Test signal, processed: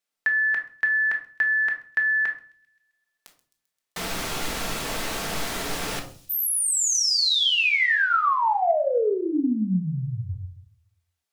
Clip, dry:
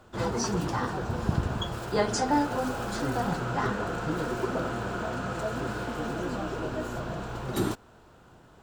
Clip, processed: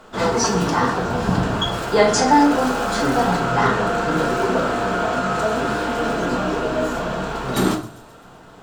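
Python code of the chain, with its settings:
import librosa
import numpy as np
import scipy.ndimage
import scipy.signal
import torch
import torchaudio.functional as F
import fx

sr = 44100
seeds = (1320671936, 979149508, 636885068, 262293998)

p1 = fx.low_shelf(x, sr, hz=220.0, db=-10.5)
p2 = fx.echo_wet_highpass(p1, sr, ms=131, feedback_pct=60, hz=4700.0, wet_db=-17)
p3 = fx.room_shoebox(p2, sr, seeds[0], volume_m3=450.0, walls='furnished', distance_m=1.6)
p4 = 10.0 ** (-19.5 / 20.0) * np.tanh(p3 / 10.0 ** (-19.5 / 20.0))
p5 = p3 + (p4 * 10.0 ** (-10.5 / 20.0))
p6 = fx.high_shelf(p5, sr, hz=11000.0, db=-6.5)
y = p6 * 10.0 ** (8.5 / 20.0)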